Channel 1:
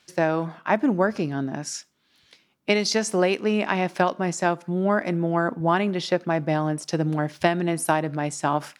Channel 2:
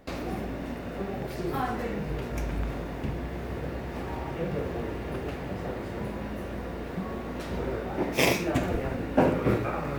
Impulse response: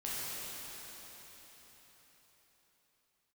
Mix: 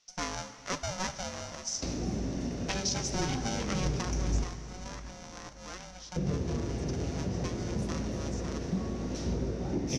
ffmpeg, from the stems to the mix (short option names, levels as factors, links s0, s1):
-filter_complex "[0:a]flanger=delay=2.4:depth=4.8:regen=69:speed=0.43:shape=triangular,aeval=exprs='val(0)*sgn(sin(2*PI*370*n/s))':c=same,volume=0.299,afade=t=out:st=3.88:d=0.62:silence=0.298538,asplit=2[s0][s1];[s1]volume=0.211[s2];[1:a]equalizer=f=1500:w=0.49:g=-9,acrossover=split=290[s3][s4];[s4]acompressor=threshold=0.00708:ratio=5[s5];[s3][s5]amix=inputs=2:normalize=0,adelay=1750,volume=1.26,asplit=3[s6][s7][s8];[s6]atrim=end=4.44,asetpts=PTS-STARTPTS,afade=t=out:st=4.436:d=0.004:c=hsin[s9];[s7]atrim=start=4.44:end=6.16,asetpts=PTS-STARTPTS,volume=0[s10];[s8]atrim=start=6.16,asetpts=PTS-STARTPTS,afade=t=in:d=0.004:c=hsin[s11];[s9][s10][s11]concat=n=3:v=0:a=1,asplit=2[s12][s13];[s13]volume=0.224[s14];[2:a]atrim=start_sample=2205[s15];[s2][s14]amix=inputs=2:normalize=0[s16];[s16][s15]afir=irnorm=-1:irlink=0[s17];[s0][s12][s17]amix=inputs=3:normalize=0,lowpass=f=5900:t=q:w=6.4,alimiter=limit=0.119:level=0:latency=1:release=433"